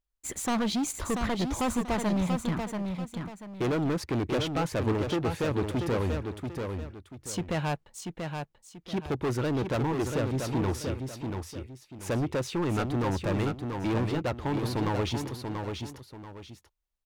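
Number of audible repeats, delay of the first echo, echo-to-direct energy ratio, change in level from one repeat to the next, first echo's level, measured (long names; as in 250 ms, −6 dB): 2, 686 ms, −5.0 dB, −10.0 dB, −5.5 dB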